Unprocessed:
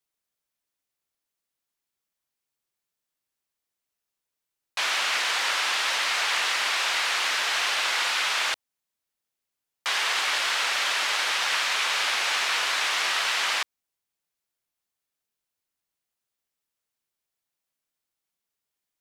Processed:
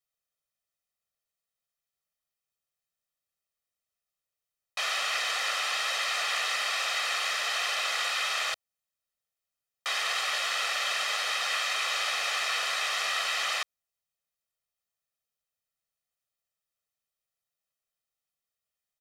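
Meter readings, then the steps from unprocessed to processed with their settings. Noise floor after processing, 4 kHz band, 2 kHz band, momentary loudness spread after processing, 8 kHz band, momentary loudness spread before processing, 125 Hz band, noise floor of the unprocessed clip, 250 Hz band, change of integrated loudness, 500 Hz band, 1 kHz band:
under -85 dBFS, -4.5 dB, -4.5 dB, 3 LU, -4.0 dB, 3 LU, n/a, under -85 dBFS, under -10 dB, -4.0 dB, -2.0 dB, -4.0 dB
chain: comb 1.6 ms, depth 72%; gain -6 dB

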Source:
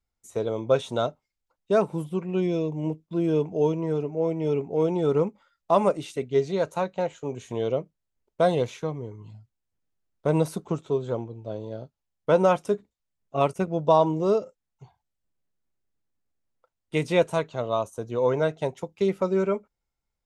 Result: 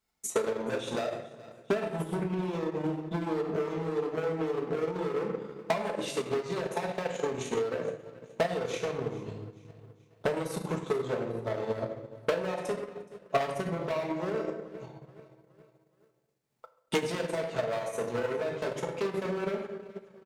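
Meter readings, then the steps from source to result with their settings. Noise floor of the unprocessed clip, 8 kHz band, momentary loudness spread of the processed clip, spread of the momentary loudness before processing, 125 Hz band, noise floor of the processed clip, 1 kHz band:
-83 dBFS, +3.5 dB, 11 LU, 10 LU, -7.5 dB, -69 dBFS, -7.0 dB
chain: compressor 10:1, threshold -29 dBFS, peak gain reduction 15.5 dB; overloaded stage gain 34.5 dB; HPF 280 Hz 6 dB/oct; on a send: feedback echo 0.424 s, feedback 44%, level -18.5 dB; on the sum: shoebox room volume 510 m³, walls mixed, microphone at 1.5 m; limiter -30 dBFS, peak gain reduction 7.5 dB; transient shaper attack +10 dB, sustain -6 dB; gain +5 dB

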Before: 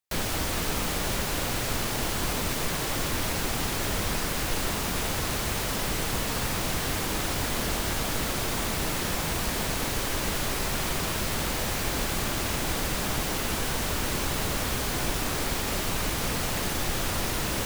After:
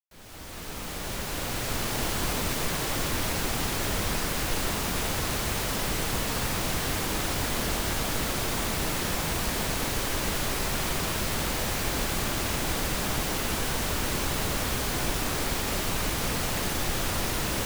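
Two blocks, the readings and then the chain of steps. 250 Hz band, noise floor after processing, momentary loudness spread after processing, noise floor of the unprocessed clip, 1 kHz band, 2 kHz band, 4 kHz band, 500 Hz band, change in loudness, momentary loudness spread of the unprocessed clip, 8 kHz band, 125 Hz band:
-0.5 dB, -36 dBFS, 1 LU, -30 dBFS, -0.5 dB, -0.5 dB, -0.5 dB, -0.5 dB, 0.0 dB, 0 LU, -0.5 dB, -0.5 dB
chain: opening faded in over 2.00 s

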